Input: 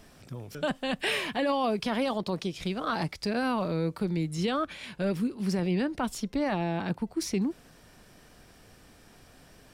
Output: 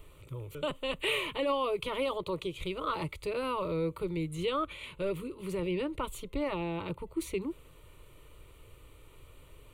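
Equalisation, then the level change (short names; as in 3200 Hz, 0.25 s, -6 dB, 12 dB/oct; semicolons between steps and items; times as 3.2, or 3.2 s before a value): low shelf 120 Hz +8 dB; fixed phaser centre 1100 Hz, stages 8; 0.0 dB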